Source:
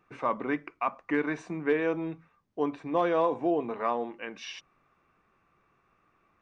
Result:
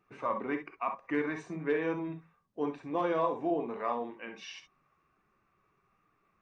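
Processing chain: bin magnitudes rounded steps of 15 dB; non-linear reverb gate 80 ms rising, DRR 6 dB; gain -4.5 dB

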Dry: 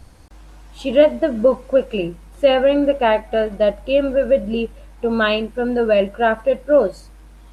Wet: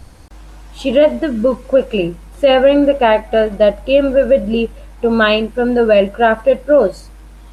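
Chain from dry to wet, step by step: 1.22–1.65 bell 700 Hz -11.5 dB 0.88 oct; maximiser +6.5 dB; gain -1 dB

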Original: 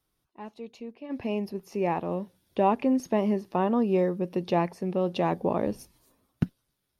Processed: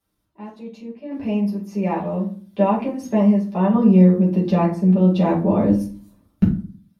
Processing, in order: 3.74–6.43 low shelf 220 Hz +9.5 dB; reverb RT60 0.45 s, pre-delay 5 ms, DRR -6.5 dB; gain -4 dB

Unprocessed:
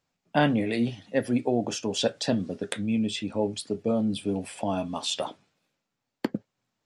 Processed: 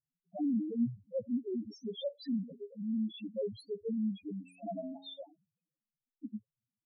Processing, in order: loudest bins only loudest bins 1; 4.32–5.22 de-hum 91.34 Hz, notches 22; rotary speaker horn 0.8 Hz

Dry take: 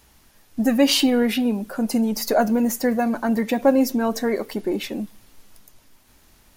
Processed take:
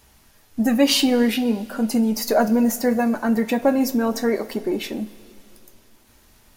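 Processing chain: two-slope reverb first 0.21 s, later 2.8 s, from -21 dB, DRR 7 dB

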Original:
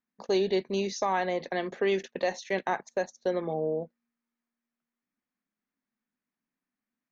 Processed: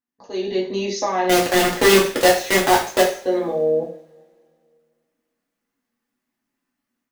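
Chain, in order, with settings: bell 180 Hz -3.5 dB 0.29 oct; in parallel at -1 dB: limiter -27.5 dBFS, peak gain reduction 10.5 dB; on the sum: AGC gain up to 11.5 dB; 1.29–3.02 companded quantiser 2-bit; two-slope reverb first 0.43 s, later 2.4 s, from -27 dB, DRR -4.5 dB; gain -12.5 dB

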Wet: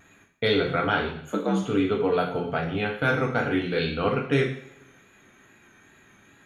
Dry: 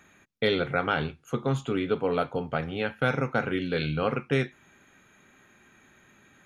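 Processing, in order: 1.21–1.62 frequency shift +64 Hz; vibrato 2.4 Hz 51 cents; two-slope reverb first 0.57 s, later 2.1 s, from -25 dB, DRR 0.5 dB

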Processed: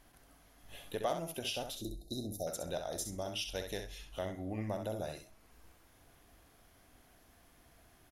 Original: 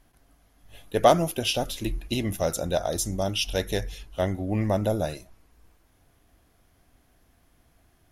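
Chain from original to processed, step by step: low shelf 240 Hz -6.5 dB; compressor 2:1, threshold -49 dBFS, peak gain reduction 19.5 dB; 1.75–2.47 brick-wall FIR band-stop 800–3600 Hz; feedback echo 65 ms, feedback 16%, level -7 dB; gain +1.5 dB

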